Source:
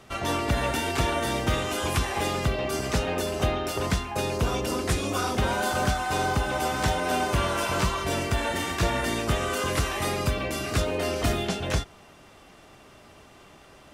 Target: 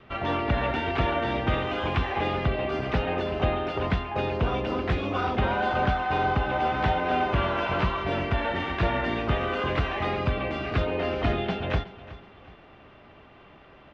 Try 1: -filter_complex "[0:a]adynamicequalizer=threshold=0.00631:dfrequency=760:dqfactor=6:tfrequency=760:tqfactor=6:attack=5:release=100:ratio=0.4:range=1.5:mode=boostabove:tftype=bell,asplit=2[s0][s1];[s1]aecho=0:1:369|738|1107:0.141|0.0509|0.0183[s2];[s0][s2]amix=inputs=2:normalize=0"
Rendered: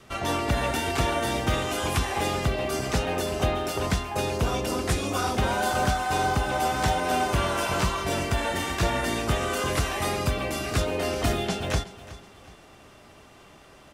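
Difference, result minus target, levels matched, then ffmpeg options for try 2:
4 kHz band +4.0 dB
-filter_complex "[0:a]adynamicequalizer=threshold=0.00631:dfrequency=760:dqfactor=6:tfrequency=760:tqfactor=6:attack=5:release=100:ratio=0.4:range=1.5:mode=boostabove:tftype=bell,lowpass=f=3200:w=0.5412,lowpass=f=3200:w=1.3066,asplit=2[s0][s1];[s1]aecho=0:1:369|738|1107:0.141|0.0509|0.0183[s2];[s0][s2]amix=inputs=2:normalize=0"

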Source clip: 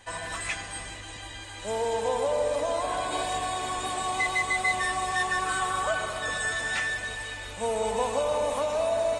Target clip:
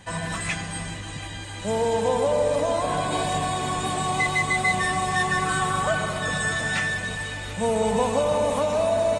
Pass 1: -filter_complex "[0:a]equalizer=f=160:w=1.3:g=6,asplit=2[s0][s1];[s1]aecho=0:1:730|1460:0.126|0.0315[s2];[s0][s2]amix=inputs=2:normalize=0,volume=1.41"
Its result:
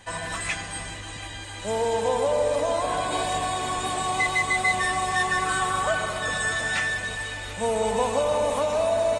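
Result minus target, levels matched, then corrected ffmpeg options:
125 Hz band -5.5 dB
-filter_complex "[0:a]equalizer=f=160:w=1.3:g=17,asplit=2[s0][s1];[s1]aecho=0:1:730|1460:0.126|0.0315[s2];[s0][s2]amix=inputs=2:normalize=0,volume=1.41"

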